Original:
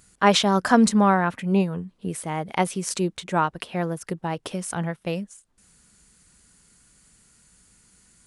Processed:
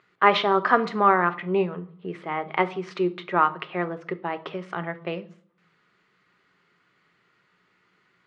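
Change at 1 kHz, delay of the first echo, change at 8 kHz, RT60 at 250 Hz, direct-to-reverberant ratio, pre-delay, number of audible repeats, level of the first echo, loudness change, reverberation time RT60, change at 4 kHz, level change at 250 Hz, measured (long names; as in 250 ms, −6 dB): +1.5 dB, no echo audible, below −25 dB, 0.95 s, 10.0 dB, 5 ms, no echo audible, no echo audible, −1.0 dB, 0.55 s, −5.0 dB, −7.5 dB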